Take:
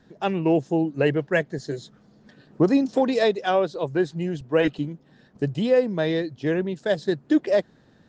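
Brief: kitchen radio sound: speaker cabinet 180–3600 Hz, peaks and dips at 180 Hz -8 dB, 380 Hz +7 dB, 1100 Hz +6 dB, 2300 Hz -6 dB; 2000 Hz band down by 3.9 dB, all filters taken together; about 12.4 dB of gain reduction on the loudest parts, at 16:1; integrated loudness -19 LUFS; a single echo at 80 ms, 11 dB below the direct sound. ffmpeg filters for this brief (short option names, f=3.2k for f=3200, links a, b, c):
-af "equalizer=f=2k:t=o:g=-4,acompressor=threshold=-27dB:ratio=16,highpass=180,equalizer=f=180:t=q:w=4:g=-8,equalizer=f=380:t=q:w=4:g=7,equalizer=f=1.1k:t=q:w=4:g=6,equalizer=f=2.3k:t=q:w=4:g=-6,lowpass=f=3.6k:w=0.5412,lowpass=f=3.6k:w=1.3066,aecho=1:1:80:0.282,volume=12dB"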